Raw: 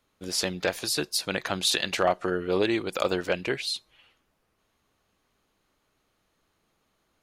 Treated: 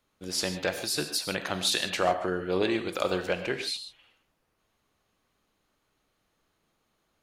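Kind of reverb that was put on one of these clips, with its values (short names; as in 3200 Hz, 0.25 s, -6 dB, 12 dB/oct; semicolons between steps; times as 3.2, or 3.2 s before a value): non-linear reverb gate 0.17 s flat, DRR 7.5 dB; gain -2.5 dB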